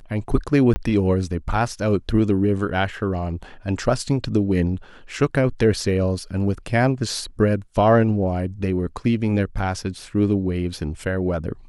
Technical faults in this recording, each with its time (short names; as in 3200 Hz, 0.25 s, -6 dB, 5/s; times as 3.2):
0.74–0.76 gap 20 ms